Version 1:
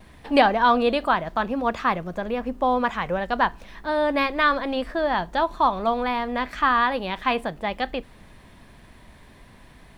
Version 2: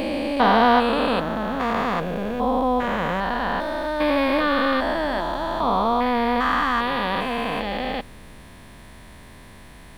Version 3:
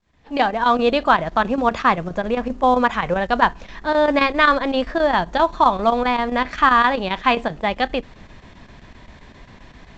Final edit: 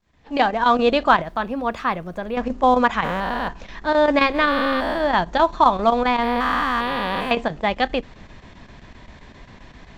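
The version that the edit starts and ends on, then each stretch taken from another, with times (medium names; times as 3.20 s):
3
1.22–2.36 s: from 1
3.04–3.48 s: from 2
4.42–5.05 s: from 2, crossfade 0.24 s
6.23–7.31 s: from 2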